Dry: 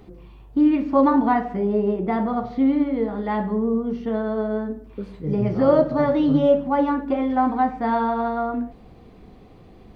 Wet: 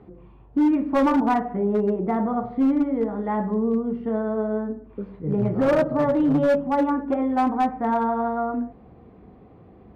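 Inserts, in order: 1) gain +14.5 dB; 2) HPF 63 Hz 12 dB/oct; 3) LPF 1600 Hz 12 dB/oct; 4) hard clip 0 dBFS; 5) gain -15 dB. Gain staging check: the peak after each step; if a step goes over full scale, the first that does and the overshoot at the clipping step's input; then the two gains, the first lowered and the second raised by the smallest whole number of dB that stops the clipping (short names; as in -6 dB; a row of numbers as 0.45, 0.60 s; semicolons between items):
+8.5, +9.0, +9.0, 0.0, -15.0 dBFS; step 1, 9.0 dB; step 1 +5.5 dB, step 5 -6 dB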